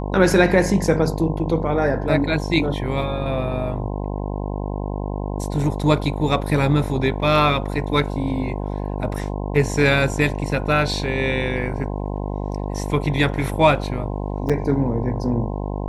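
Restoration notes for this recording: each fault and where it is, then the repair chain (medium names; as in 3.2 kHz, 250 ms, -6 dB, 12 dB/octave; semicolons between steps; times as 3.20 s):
buzz 50 Hz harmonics 21 -26 dBFS
14.49–14.50 s: dropout 6.3 ms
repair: de-hum 50 Hz, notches 21; interpolate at 14.49 s, 6.3 ms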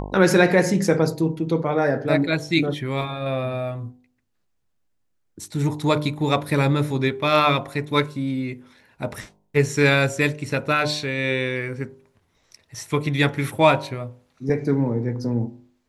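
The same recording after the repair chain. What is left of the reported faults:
nothing left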